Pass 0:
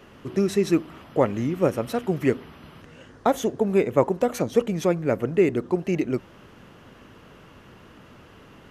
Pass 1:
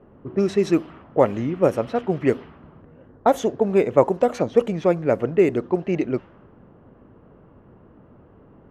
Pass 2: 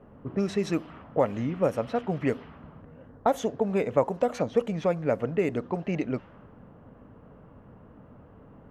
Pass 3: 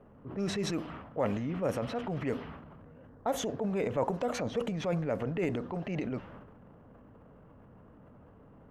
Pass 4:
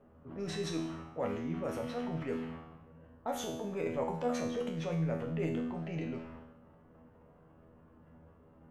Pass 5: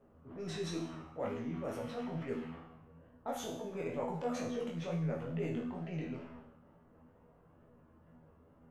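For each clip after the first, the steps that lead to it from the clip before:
dynamic EQ 660 Hz, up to +5 dB, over -31 dBFS, Q 0.91; low-pass opened by the level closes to 750 Hz, open at -13.5 dBFS
bell 360 Hz -10.5 dB 0.24 oct; compressor 1.5:1, threshold -30 dBFS, peak gain reduction 7.5 dB
transient shaper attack -5 dB, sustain +8 dB; gain -5 dB
resonator 81 Hz, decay 0.73 s, harmonics all, mix 90%; gain +7.5 dB
chorus 2.2 Hz, delay 16.5 ms, depth 7.4 ms

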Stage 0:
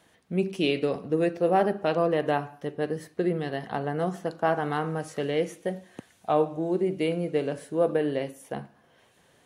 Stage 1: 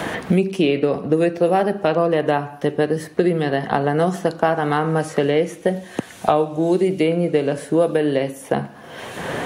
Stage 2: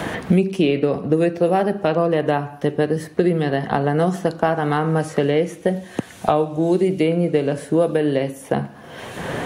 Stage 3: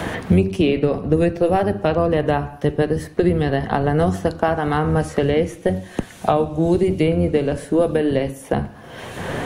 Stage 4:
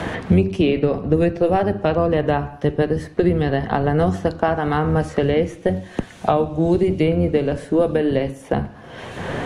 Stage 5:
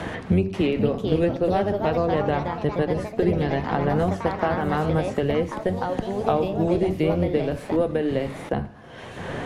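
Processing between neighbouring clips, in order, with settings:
three-band squash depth 100%; gain +7.5 dB
low shelf 190 Hz +6 dB; gain -1.5 dB
octaver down 1 oct, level -5 dB
air absorption 52 m
echoes that change speed 0.537 s, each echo +3 st, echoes 3, each echo -6 dB; gain -5 dB

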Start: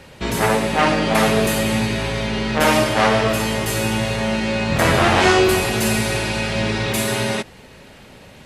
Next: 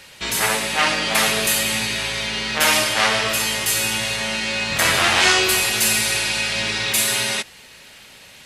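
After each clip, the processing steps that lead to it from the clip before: tilt shelf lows -9.5 dB, about 1200 Hz; gain -2 dB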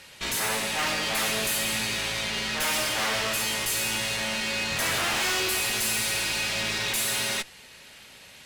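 tube stage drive 24 dB, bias 0.75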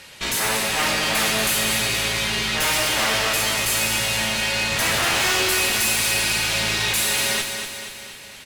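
feedback echo 0.238 s, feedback 55%, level -7 dB; gain +5 dB

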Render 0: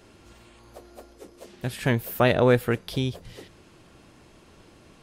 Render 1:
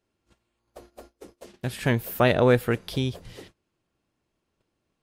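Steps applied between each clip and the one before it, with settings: gate -47 dBFS, range -25 dB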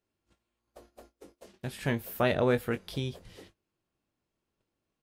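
doubler 21 ms -9.5 dB; gain -7 dB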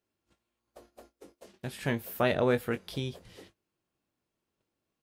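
low shelf 62 Hz -8.5 dB

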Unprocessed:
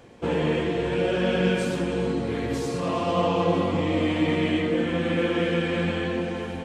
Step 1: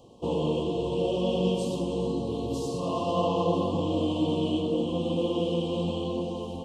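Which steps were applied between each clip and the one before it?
Chebyshev band-stop 1100–2800 Hz, order 4; gain -2.5 dB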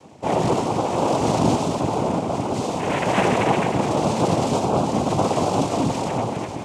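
noise vocoder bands 4; gain +7 dB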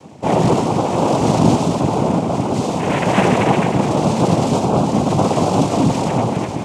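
bell 170 Hz +5 dB 1.4 oct; in parallel at +1 dB: vocal rider 2 s; on the sum: gain -3.5 dB

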